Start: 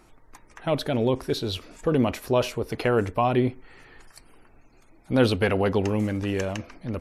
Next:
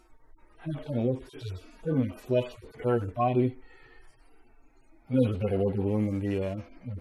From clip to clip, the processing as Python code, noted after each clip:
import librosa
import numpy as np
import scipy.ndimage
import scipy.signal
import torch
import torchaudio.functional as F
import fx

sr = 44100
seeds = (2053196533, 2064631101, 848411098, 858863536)

y = fx.hpss_only(x, sr, part='harmonic')
y = F.gain(torch.from_numpy(y), -2.0).numpy()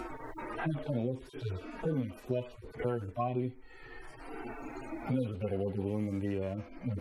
y = fx.band_squash(x, sr, depth_pct=100)
y = F.gain(torch.from_numpy(y), -6.5).numpy()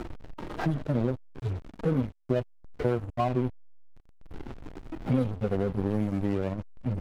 y = fx.backlash(x, sr, play_db=-32.0)
y = F.gain(torch.from_numpy(y), 7.5).numpy()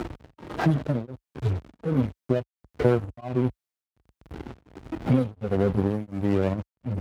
y = scipy.signal.sosfilt(scipy.signal.butter(4, 49.0, 'highpass', fs=sr, output='sos'), x)
y = y * np.abs(np.cos(np.pi * 1.4 * np.arange(len(y)) / sr))
y = F.gain(torch.from_numpy(y), 6.5).numpy()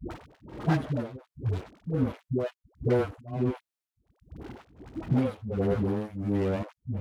y = fx.dispersion(x, sr, late='highs', ms=108.0, hz=370.0)
y = F.gain(torch.from_numpy(y), -3.5).numpy()